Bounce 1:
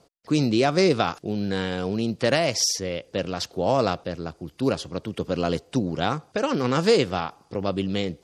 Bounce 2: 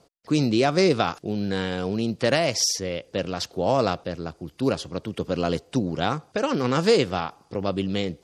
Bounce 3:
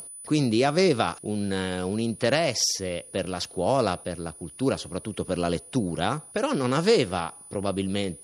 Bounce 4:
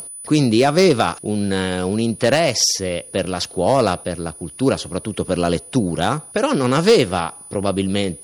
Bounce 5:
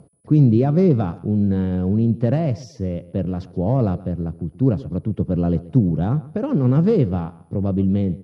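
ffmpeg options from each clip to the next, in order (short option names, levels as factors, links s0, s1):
-af anull
-af "aeval=exprs='val(0)+0.00708*sin(2*PI*9900*n/s)':c=same,acompressor=mode=upward:threshold=0.0178:ratio=2.5,volume=0.841"
-af "asoftclip=type=hard:threshold=0.224,volume=2.37"
-af "bandpass=f=120:t=q:w=1.3:csg=0,aecho=1:1:130|260:0.119|0.0285,volume=2.37"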